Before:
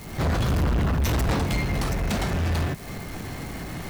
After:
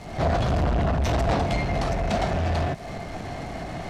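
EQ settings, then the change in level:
low-pass filter 6,200 Hz 12 dB per octave
parametric band 680 Hz +12 dB 0.47 octaves
−1.0 dB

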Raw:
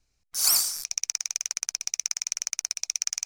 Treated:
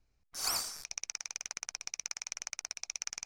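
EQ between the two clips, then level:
low-pass filter 1,600 Hz 6 dB per octave
0.0 dB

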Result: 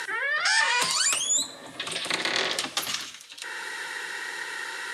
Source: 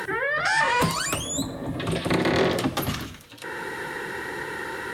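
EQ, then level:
meter weighting curve ITU-R 468
−5.0 dB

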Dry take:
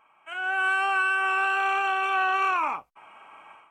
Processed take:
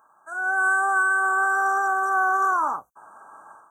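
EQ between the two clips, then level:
high-pass filter 71 Hz
linear-phase brick-wall band-stop 1,700–5,800 Hz
high-shelf EQ 3,500 Hz +9 dB
+2.5 dB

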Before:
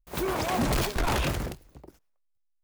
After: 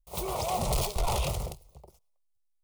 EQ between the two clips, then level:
parametric band 9,300 Hz +4 dB 0.36 octaves
phaser with its sweep stopped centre 680 Hz, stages 4
0.0 dB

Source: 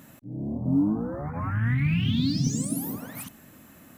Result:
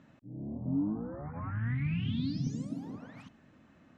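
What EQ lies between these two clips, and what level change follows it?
low-pass with resonance 7,200 Hz, resonance Q 2
high-frequency loss of the air 260 metres
−8.0 dB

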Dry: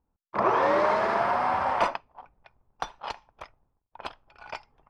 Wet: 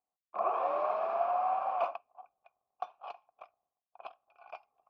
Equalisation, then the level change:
formant filter a
0.0 dB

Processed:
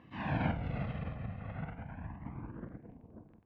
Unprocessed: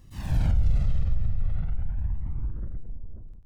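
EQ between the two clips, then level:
loudspeaker in its box 360–2,200 Hz, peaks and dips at 390 Hz −9 dB, 570 Hz −8 dB, 840 Hz −4 dB, 1,300 Hz −9 dB, 1,900 Hz −5 dB
+12.0 dB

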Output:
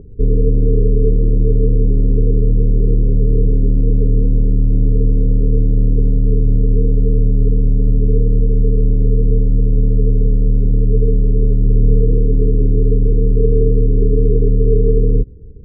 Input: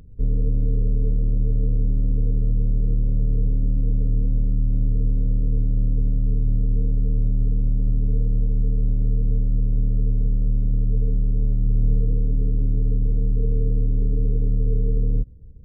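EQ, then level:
low-pass with resonance 410 Hz, resonance Q 4.9
+7.0 dB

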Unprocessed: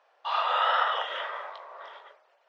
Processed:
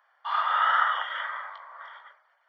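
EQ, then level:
Savitzky-Golay smoothing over 41 samples
high-pass filter 1,300 Hz 12 dB per octave
spectral tilt +3 dB per octave
+5.5 dB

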